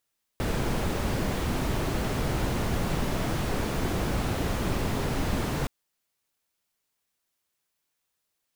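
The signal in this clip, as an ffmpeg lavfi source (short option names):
-f lavfi -i "anoisesrc=c=brown:a=0.209:d=5.27:r=44100:seed=1"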